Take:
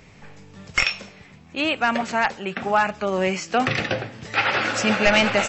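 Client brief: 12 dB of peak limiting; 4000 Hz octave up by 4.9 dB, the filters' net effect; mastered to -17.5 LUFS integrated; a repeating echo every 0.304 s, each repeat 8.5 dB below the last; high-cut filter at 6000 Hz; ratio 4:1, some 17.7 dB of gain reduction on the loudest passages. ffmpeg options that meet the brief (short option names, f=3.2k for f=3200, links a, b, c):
-af "lowpass=6k,equalizer=f=4k:t=o:g=8,acompressor=threshold=-34dB:ratio=4,alimiter=level_in=1.5dB:limit=-24dB:level=0:latency=1,volume=-1.5dB,aecho=1:1:304|608|912|1216:0.376|0.143|0.0543|0.0206,volume=19dB"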